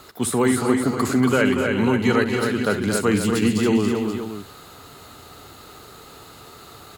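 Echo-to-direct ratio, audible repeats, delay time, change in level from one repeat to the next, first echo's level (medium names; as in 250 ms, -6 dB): -2.0 dB, 5, 63 ms, no regular repeats, -13.5 dB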